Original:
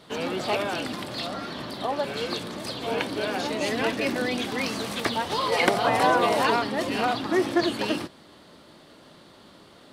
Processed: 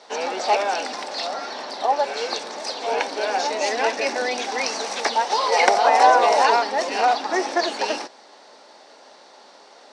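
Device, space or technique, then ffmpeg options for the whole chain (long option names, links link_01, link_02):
phone speaker on a table: -af "highpass=frequency=330:width=0.5412,highpass=frequency=330:width=1.3066,equalizer=frequency=330:width_type=q:width=4:gain=-10,equalizer=frequency=820:width_type=q:width=4:gain=8,equalizer=frequency=1200:width_type=q:width=4:gain=-4,equalizer=frequency=3200:width_type=q:width=4:gain=-7,equalizer=frequency=5700:width_type=q:width=4:gain=9,lowpass=frequency=7900:width=0.5412,lowpass=frequency=7900:width=1.3066,volume=4.5dB"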